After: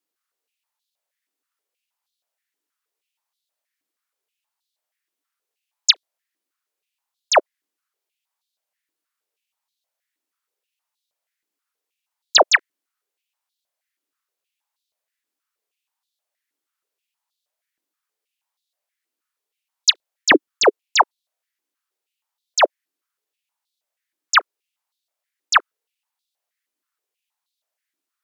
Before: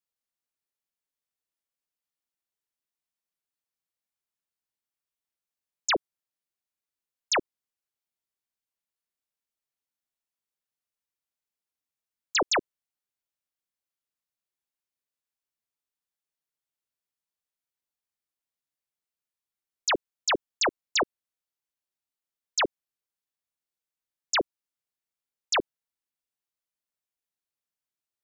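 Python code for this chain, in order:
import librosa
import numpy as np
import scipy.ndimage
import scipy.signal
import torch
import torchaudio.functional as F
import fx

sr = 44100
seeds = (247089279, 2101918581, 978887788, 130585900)

y = fx.cheby_harmonics(x, sr, harmonics=(4,), levels_db=(-37,), full_scale_db=-19.5)
y = fx.filter_held_highpass(y, sr, hz=6.3, low_hz=300.0, high_hz=3800.0)
y = y * 10.0 ** (6.5 / 20.0)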